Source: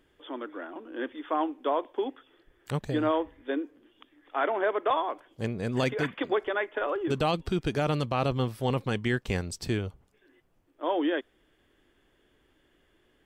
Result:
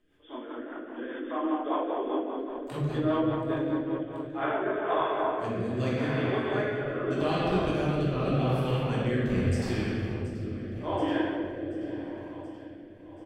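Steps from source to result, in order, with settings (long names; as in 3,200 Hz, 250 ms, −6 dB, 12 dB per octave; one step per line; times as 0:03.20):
on a send: repeating echo 730 ms, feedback 58%, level −13.5 dB
on the sum: rectangular room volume 210 cubic metres, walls hard, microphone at 1.3 metres
rotating-speaker cabinet horn 5 Hz, later 0.85 Hz, at 0:03.92
level −7.5 dB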